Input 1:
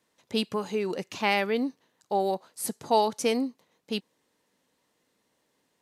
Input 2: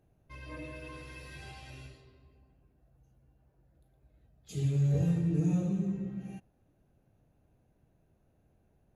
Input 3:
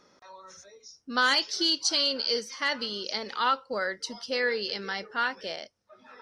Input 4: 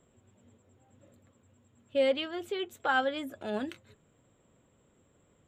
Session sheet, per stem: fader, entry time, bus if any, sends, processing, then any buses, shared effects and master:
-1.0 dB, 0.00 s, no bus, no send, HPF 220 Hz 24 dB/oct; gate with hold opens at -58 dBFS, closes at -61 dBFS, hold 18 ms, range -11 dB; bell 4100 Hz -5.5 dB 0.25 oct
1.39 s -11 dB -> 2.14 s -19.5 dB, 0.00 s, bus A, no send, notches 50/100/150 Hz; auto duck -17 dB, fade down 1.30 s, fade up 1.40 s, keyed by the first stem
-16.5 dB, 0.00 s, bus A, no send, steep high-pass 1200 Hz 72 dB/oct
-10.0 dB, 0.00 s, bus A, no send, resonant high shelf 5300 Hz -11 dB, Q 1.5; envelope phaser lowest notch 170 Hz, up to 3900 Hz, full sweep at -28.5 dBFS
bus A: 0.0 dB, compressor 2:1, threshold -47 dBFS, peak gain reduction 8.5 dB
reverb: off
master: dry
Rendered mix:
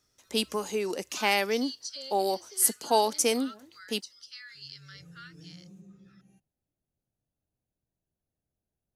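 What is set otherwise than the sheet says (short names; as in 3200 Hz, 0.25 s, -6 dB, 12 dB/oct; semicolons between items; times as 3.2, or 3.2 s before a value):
stem 4 -10.0 dB -> -16.0 dB; master: extra tone controls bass +1 dB, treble +12 dB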